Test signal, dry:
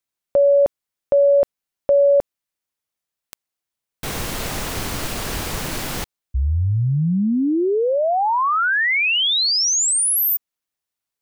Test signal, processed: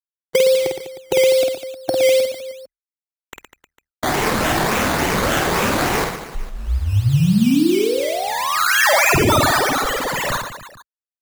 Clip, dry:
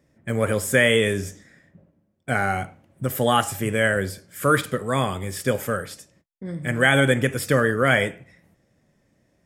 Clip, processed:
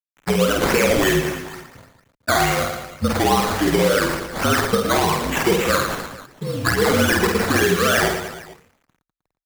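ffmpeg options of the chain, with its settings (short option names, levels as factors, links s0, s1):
-af "afftfilt=real='re*pow(10,23/40*sin(2*PI*(0.89*log(max(b,1)*sr/1024/100)/log(2)-(2.3)*(pts-256)/sr)))':imag='im*pow(10,23/40*sin(2*PI*(0.89*log(max(b,1)*sr/1024/100)/log(2)-(2.3)*(pts-256)/sr)))':win_size=1024:overlap=0.75,highpass=170,areverse,acompressor=mode=upward:threshold=0.00316:ratio=1.5:attack=11:release=841:knee=2.83:detection=peak,areverse,alimiter=limit=0.376:level=0:latency=1:release=21,acompressor=threshold=0.0562:ratio=3:attack=80:release=215:knee=6:detection=rms,acrusher=bits=7:mix=0:aa=0.000001,afreqshift=-41,acrusher=samples=13:mix=1:aa=0.000001:lfo=1:lforange=7.8:lforate=3.5,aecho=1:1:50|115|199.5|309.4|452.2:0.631|0.398|0.251|0.158|0.1,volume=1.78"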